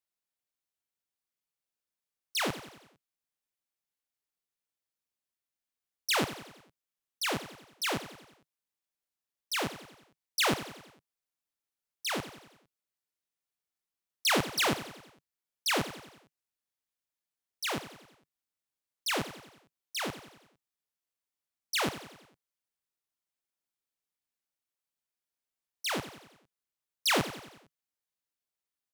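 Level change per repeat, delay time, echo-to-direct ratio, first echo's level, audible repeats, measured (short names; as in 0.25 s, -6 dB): -5.5 dB, 91 ms, -11.5 dB, -13.0 dB, 4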